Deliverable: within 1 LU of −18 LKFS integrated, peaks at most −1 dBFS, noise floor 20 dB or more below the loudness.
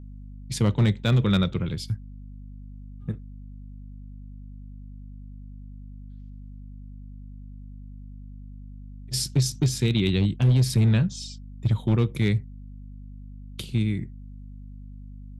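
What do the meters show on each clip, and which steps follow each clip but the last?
share of clipped samples 0.7%; peaks flattened at −14.5 dBFS; mains hum 50 Hz; hum harmonics up to 250 Hz; level of the hum −39 dBFS; integrated loudness −24.5 LKFS; sample peak −14.5 dBFS; target loudness −18.0 LKFS
→ clipped peaks rebuilt −14.5 dBFS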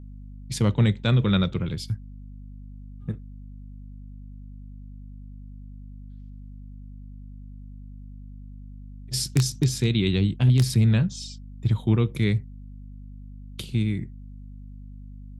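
share of clipped samples 0.0%; mains hum 50 Hz; hum harmonics up to 250 Hz; level of the hum −40 dBFS
→ hum removal 50 Hz, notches 5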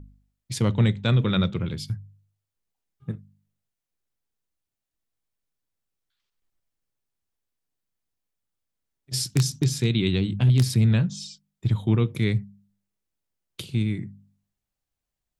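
mains hum none found; integrated loudness −24.0 LKFS; sample peak −6.0 dBFS; target loudness −18.0 LKFS
→ level +6 dB
brickwall limiter −1 dBFS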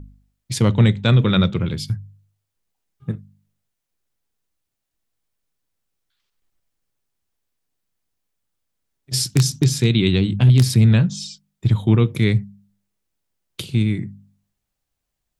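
integrated loudness −18.0 LKFS; sample peak −1.0 dBFS; background noise floor −80 dBFS

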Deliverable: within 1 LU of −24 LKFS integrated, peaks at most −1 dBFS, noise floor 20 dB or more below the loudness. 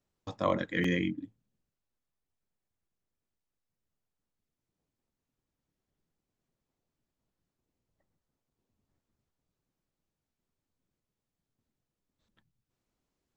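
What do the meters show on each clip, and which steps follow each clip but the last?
number of dropouts 1; longest dropout 3.7 ms; integrated loudness −31.5 LKFS; sample peak −13.5 dBFS; target loudness −24.0 LKFS
→ repair the gap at 0:00.84, 3.7 ms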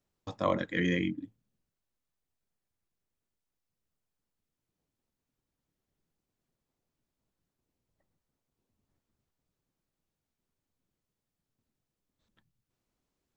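number of dropouts 0; integrated loudness −31.0 LKFS; sample peak −13.5 dBFS; target loudness −24.0 LKFS
→ level +7 dB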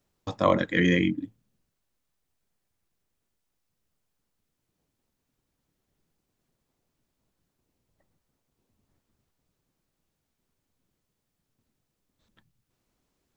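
integrated loudness −24.0 LKFS; sample peak −6.5 dBFS; background noise floor −81 dBFS

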